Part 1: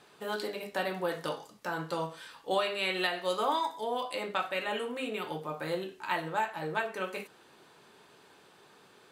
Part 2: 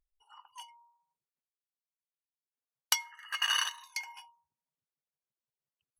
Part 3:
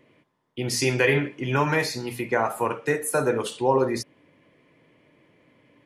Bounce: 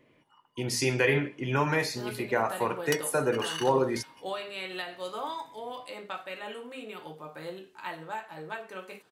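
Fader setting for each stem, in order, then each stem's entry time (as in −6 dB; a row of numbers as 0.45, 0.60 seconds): −6.0, −7.0, −4.0 decibels; 1.75, 0.00, 0.00 seconds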